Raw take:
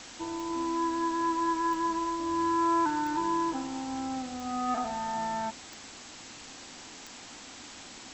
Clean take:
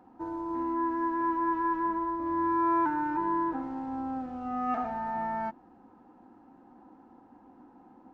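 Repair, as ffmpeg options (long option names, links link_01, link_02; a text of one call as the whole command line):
ffmpeg -i in.wav -af "adeclick=threshold=4,afwtdn=0.0071" out.wav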